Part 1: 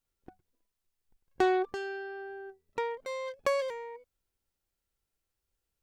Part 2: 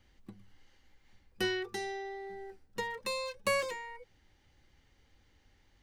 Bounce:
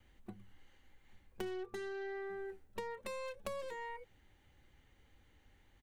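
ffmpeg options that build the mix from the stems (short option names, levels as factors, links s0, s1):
-filter_complex "[0:a]aeval=exprs='(tanh(56.2*val(0)+0.8)-tanh(0.8))/56.2':c=same,volume=1.19[s0];[1:a]acrossover=split=420[s1][s2];[s2]acompressor=threshold=0.00891:ratio=6[s3];[s1][s3]amix=inputs=2:normalize=0,equalizer=f=5100:w=3.1:g=-13.5,adelay=1.6,volume=1[s4];[s0][s4]amix=inputs=2:normalize=0,acompressor=threshold=0.01:ratio=5"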